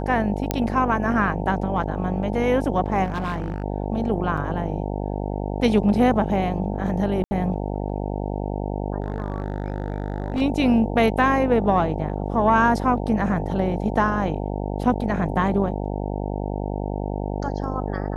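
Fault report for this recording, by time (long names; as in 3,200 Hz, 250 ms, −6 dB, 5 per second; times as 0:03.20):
mains buzz 50 Hz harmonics 18 −27 dBFS
0:00.51: click −7 dBFS
0:03.04–0:03.64: clipping −22 dBFS
0:04.37–0:04.38: drop-out 5.2 ms
0:07.24–0:07.31: drop-out 70 ms
0:09.02–0:10.42: clipping −20 dBFS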